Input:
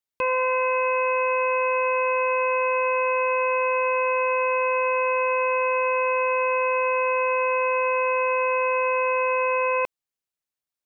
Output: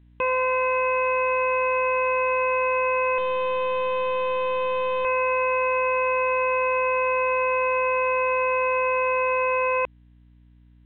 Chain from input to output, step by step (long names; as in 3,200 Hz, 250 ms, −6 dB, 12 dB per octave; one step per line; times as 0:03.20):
0:03.18–0:05.05: linear delta modulator 64 kbit/s, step −44 dBFS
mains hum 60 Hz, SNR 30 dB
A-law companding 64 kbit/s 8,000 Hz